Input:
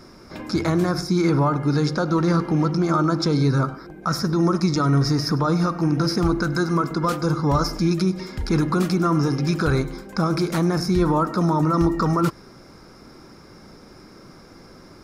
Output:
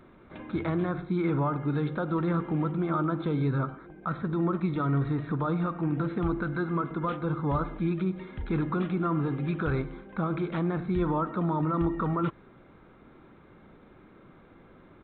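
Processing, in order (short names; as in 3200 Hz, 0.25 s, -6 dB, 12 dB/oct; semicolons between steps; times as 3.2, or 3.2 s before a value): downsampling 8000 Hz; gain -8 dB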